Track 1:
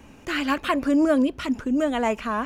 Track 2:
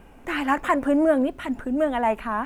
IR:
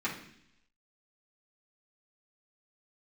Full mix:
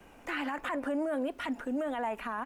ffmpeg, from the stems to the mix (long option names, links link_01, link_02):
-filter_complex "[0:a]volume=-11.5dB[link_01];[1:a]adelay=4.1,volume=-2.5dB,asplit=2[link_02][link_03];[link_03]apad=whole_len=108251[link_04];[link_01][link_04]sidechaincompress=threshold=-28dB:ratio=8:attack=16:release=390[link_05];[link_05][link_02]amix=inputs=2:normalize=0,lowshelf=frequency=240:gain=-9.5,acrossover=split=250|4700[link_06][link_07][link_08];[link_06]acompressor=threshold=-44dB:ratio=4[link_09];[link_07]acompressor=threshold=-26dB:ratio=4[link_10];[link_08]acompressor=threshold=-58dB:ratio=4[link_11];[link_09][link_10][link_11]amix=inputs=3:normalize=0,alimiter=level_in=1.5dB:limit=-24dB:level=0:latency=1:release=24,volume=-1.5dB"